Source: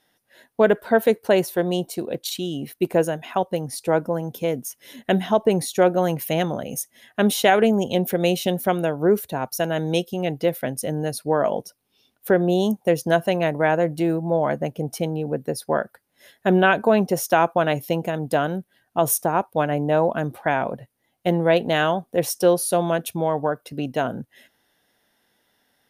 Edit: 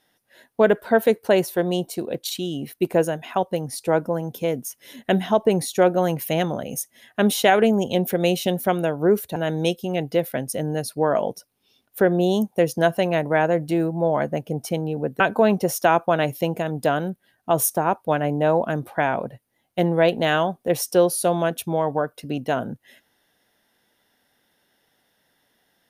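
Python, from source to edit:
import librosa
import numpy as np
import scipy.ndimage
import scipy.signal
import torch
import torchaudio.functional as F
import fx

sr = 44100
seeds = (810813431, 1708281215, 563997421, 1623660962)

y = fx.edit(x, sr, fx.cut(start_s=9.36, length_s=0.29),
    fx.cut(start_s=15.49, length_s=1.19), tone=tone)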